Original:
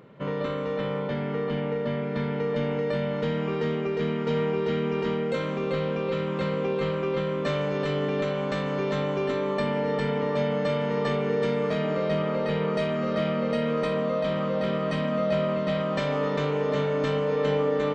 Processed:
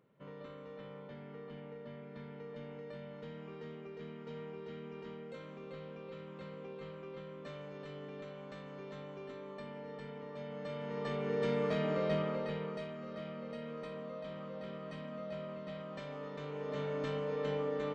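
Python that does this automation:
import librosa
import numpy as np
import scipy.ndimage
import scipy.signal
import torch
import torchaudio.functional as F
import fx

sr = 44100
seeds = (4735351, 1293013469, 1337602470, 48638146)

y = fx.gain(x, sr, db=fx.line((10.35, -20.0), (11.53, -7.0), (12.14, -7.0), (12.96, -18.0), (16.36, -18.0), (16.89, -11.5)))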